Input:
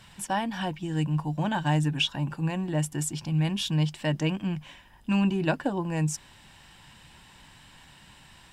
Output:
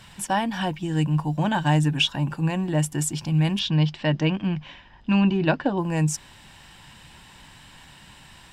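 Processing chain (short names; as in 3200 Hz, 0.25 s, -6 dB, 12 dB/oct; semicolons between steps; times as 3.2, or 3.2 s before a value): 3.59–5.78 LPF 5100 Hz 24 dB/oct; gain +4.5 dB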